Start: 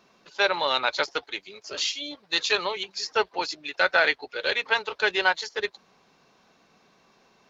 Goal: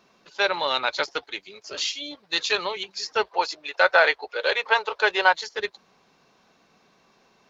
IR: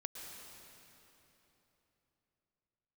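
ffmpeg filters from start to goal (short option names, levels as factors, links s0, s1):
-filter_complex "[0:a]asettb=1/sr,asplit=3[s0][s1][s2];[s0]atrim=end=3.244[s3];[s1]atrim=start=3.24:end=5.33,asetpts=PTS-STARTPTS,afade=t=in:d=0.004:c=qsin,afade=t=out:st=2.086:d=0.004:c=qsin,equalizer=f=125:t=o:w=1:g=-9,equalizer=f=250:t=o:w=1:g=-9,equalizer=f=500:t=o:w=1:g=6,equalizer=f=1000:t=o:w=1:g=6[s4];[s2]atrim=start=5.326[s5];[s3][s4]acrossfade=d=0.004:c1=hsin:c2=qsin[s6];[s6][s5]acrossfade=d=0.004:c1=qsin:c2=hsin"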